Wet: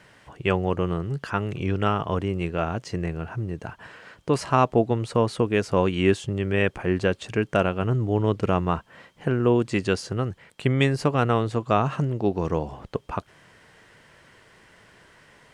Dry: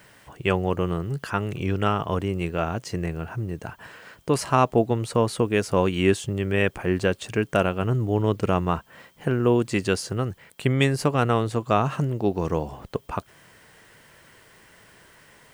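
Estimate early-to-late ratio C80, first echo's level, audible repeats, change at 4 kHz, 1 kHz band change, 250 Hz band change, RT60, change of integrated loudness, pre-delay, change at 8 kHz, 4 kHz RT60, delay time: no reverb audible, no echo audible, no echo audible, −1.5 dB, −0.5 dB, 0.0 dB, no reverb audible, 0.0 dB, no reverb audible, −5.5 dB, no reverb audible, no echo audible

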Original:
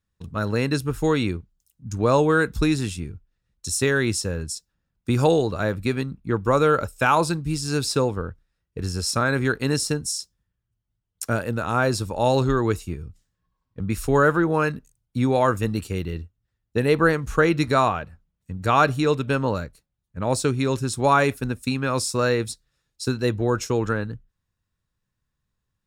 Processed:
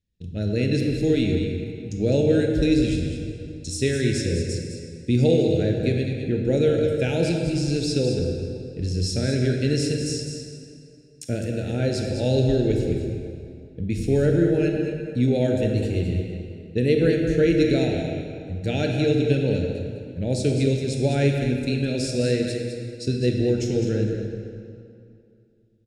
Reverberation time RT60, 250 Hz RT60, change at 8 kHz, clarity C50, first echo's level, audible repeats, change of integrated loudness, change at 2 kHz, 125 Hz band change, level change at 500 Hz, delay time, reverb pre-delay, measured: 2.5 s, 2.5 s, −5.5 dB, 2.0 dB, −8.5 dB, 1, −0.5 dB, −8.0 dB, +3.0 dB, +0.5 dB, 207 ms, 22 ms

